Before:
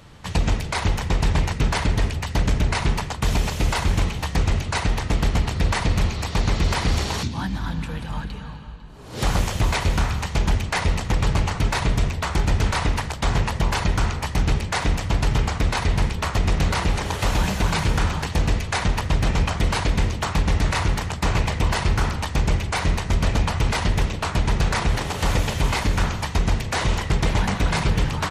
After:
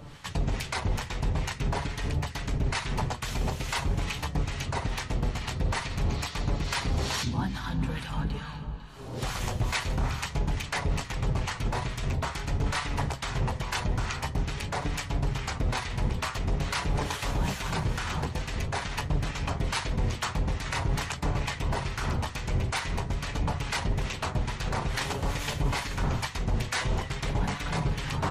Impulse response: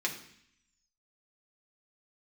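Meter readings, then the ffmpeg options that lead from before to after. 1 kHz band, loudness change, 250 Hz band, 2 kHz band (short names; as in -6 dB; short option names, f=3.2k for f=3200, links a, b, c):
-7.0 dB, -8.0 dB, -7.5 dB, -6.5 dB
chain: -filter_complex "[0:a]areverse,acompressor=threshold=-26dB:ratio=6,areverse,acrossover=split=1000[a][b];[a]aeval=exprs='val(0)*(1-0.7/2+0.7/2*cos(2*PI*2.3*n/s))':c=same[c];[b]aeval=exprs='val(0)*(1-0.7/2-0.7/2*cos(2*PI*2.3*n/s))':c=same[d];[c][d]amix=inputs=2:normalize=0,flanger=delay=6.8:depth=1.4:regen=59:speed=0.47:shape=triangular,volume=8dB"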